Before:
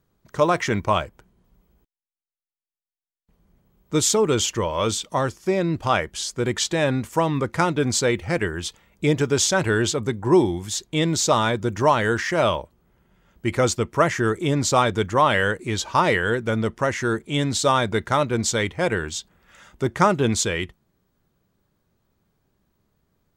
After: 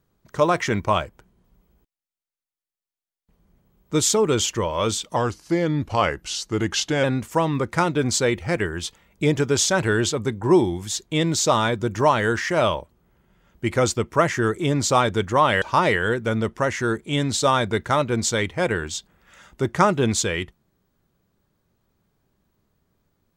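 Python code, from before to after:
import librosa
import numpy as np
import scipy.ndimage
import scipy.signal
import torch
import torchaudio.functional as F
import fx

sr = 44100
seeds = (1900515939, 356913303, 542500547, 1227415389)

y = fx.edit(x, sr, fx.speed_span(start_s=5.16, length_s=1.69, speed=0.9),
    fx.cut(start_s=15.43, length_s=0.4), tone=tone)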